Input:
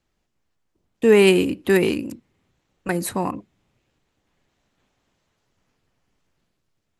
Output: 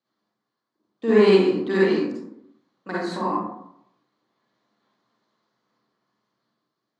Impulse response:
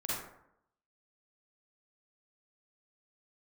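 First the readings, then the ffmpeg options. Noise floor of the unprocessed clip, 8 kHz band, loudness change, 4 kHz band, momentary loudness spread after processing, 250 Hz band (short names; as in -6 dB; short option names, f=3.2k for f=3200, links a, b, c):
-74 dBFS, under -15 dB, -1.5 dB, -4.0 dB, 16 LU, -1.0 dB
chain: -filter_complex "[0:a]highpass=f=160:w=0.5412,highpass=f=160:w=1.3066,equalizer=f=160:t=q:w=4:g=-3,equalizer=f=1.1k:t=q:w=4:g=6,equalizer=f=2.6k:t=q:w=4:g=-8,equalizer=f=4.2k:t=q:w=4:g=7,lowpass=f=5.7k:w=0.5412,lowpass=f=5.7k:w=1.3066[a];[1:a]atrim=start_sample=2205[b];[a][b]afir=irnorm=-1:irlink=0,volume=-5.5dB"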